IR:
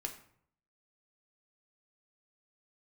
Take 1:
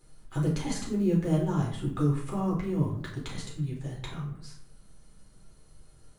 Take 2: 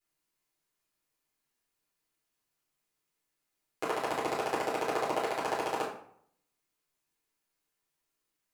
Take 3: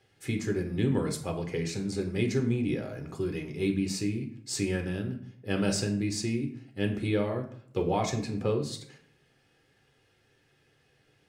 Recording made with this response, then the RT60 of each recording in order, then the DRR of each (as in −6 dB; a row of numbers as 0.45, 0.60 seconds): 3; 0.65, 0.65, 0.65 seconds; −5.0, −9.5, 3.5 decibels